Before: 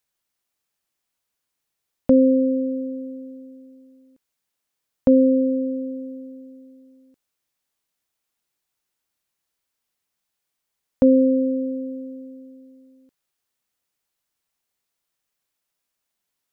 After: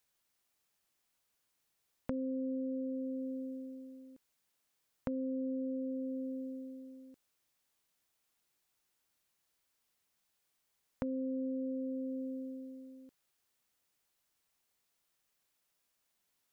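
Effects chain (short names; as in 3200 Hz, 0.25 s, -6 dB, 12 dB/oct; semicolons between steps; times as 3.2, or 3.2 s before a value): dynamic EQ 640 Hz, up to -4 dB, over -26 dBFS, Q 0.92; limiter -18 dBFS, peak gain reduction 11 dB; compressor 6:1, threshold -36 dBFS, peak gain reduction 14 dB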